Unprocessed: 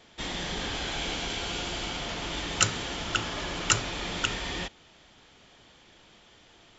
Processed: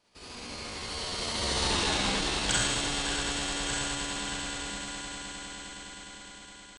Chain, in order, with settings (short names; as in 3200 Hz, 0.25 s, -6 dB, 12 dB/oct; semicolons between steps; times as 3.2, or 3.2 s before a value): Doppler pass-by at 1.73, 34 m/s, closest 10 m; in parallel at -9 dB: soft clip -20 dBFS, distortion -20 dB; on the sum: swelling echo 0.103 s, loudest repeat 8, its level -13.5 dB; Schroeder reverb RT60 1.6 s, DRR -6 dB; pitch shift +3.5 st; gain -2.5 dB